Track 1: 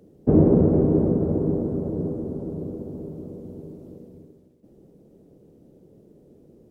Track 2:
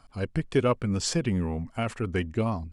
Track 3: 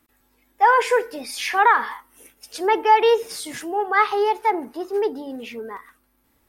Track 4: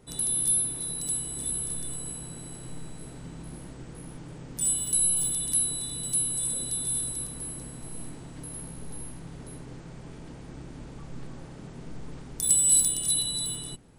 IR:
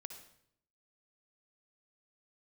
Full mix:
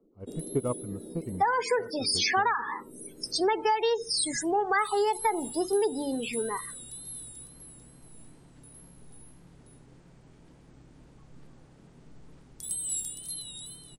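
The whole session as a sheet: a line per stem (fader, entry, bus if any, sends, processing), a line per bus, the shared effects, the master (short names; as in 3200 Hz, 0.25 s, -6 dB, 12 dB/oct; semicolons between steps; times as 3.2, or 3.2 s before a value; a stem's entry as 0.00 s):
-10.0 dB, 0.00 s, no send, HPF 220 Hz 24 dB/oct; compressor 3:1, threshold -32 dBFS, peak gain reduction 14 dB; running mean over 38 samples
-0.5 dB, 0.00 s, no send, polynomial smoothing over 65 samples; upward expander 2.5:1, over -34 dBFS
+1.5 dB, 0.80 s, no send, band shelf 6200 Hz +9 dB; loudest bins only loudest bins 32
-12.0 dB, 0.20 s, no send, wow and flutter 86 cents; auto duck -19 dB, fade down 1.95 s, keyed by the second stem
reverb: off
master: compressor 16:1, threshold -22 dBFS, peak gain reduction 14.5 dB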